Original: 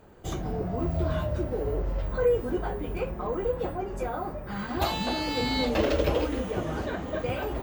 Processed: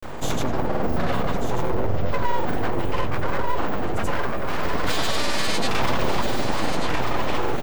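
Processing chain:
hum removal 66.45 Hz, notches 7
in parallel at +2 dB: brickwall limiter −22.5 dBFS, peak gain reduction 10.5 dB
on the sum: full-wave rectification
granular cloud, pitch spread up and down by 0 semitones
on a send: single-tap delay 1,190 ms −7.5 dB
on the sum: envelope flattener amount 50%

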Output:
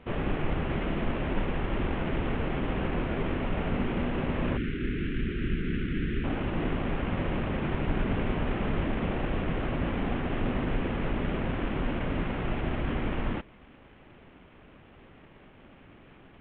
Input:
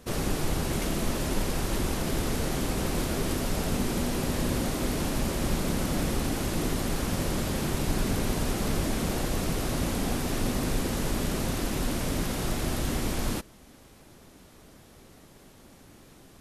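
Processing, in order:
variable-slope delta modulation 16 kbit/s
0:04.57–0:06.24: Chebyshev band-stop filter 400–1,500 Hz, order 3

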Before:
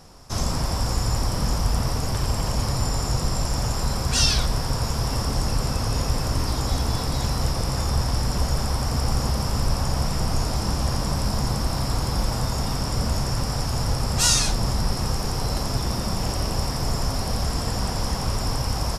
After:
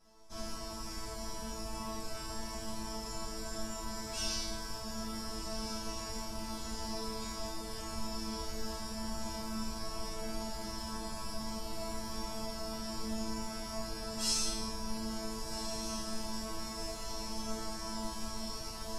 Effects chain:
resonators tuned to a chord A3 fifth, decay 0.85 s
feedback delay with all-pass diffusion 1,494 ms, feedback 66%, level −8.5 dB
level +7.5 dB

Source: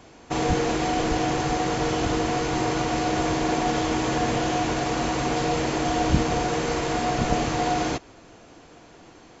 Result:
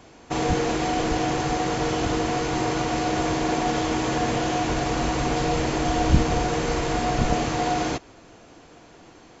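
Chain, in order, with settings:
0:04.69–0:07.31: low-shelf EQ 70 Hz +10 dB

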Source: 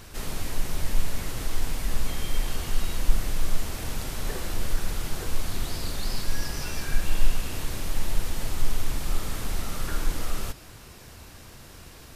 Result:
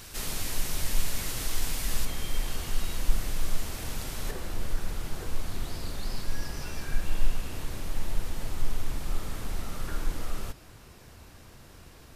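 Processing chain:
high-shelf EQ 2,100 Hz +8.5 dB, from 0:02.05 +2 dB, from 0:04.31 −4 dB
level −3.5 dB

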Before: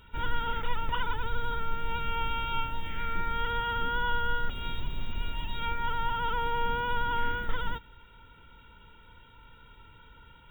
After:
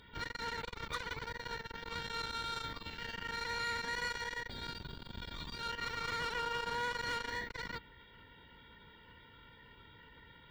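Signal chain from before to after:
soft clipping −31.5 dBFS, distortion −9 dB
notch comb filter 1,300 Hz
formants moved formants +4 semitones

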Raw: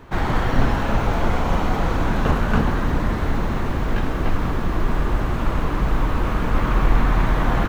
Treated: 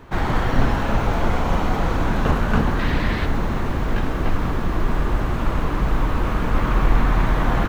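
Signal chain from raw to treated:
0:02.79–0:03.26: flat-topped bell 2,900 Hz +8 dB

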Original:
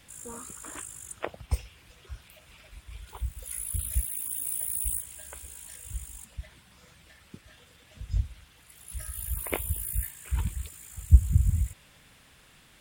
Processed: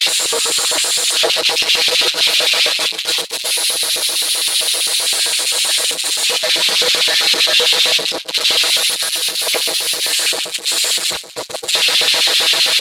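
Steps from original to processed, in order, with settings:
linear delta modulator 64 kbit/s, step −22.5 dBFS
comb filter 6.2 ms, depth 98%
on a send: single-tap delay 147 ms −9.5 dB
on the sum: auto-filter high-pass square 7.7 Hz 490–2,700 Hz
in parallel at −5.5 dB: soft clipping −24 dBFS, distortion −12 dB
on the sum: noise gate −26 dBFS, range −36 dB
parametric band 4,100 Hz +13 dB 0.55 octaves
level +3.5 dB

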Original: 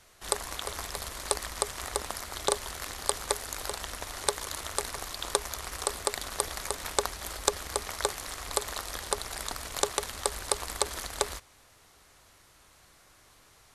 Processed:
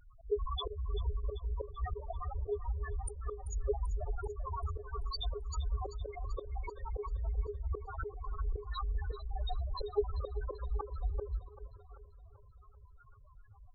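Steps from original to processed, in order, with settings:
spectral peaks only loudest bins 2
volume swells 231 ms
echo with a time of its own for lows and highs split 370 Hz, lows 286 ms, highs 388 ms, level −13.5 dB
level +14 dB

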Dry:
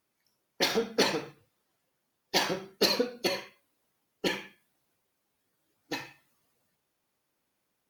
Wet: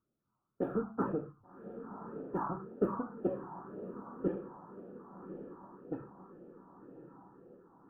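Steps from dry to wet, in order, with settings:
elliptic low-pass filter 1,300 Hz, stop band 40 dB
feedback delay with all-pass diffusion 1,124 ms, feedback 56%, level −10 dB
all-pass phaser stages 4, 1.9 Hz, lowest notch 460–1,000 Hz
level +2 dB

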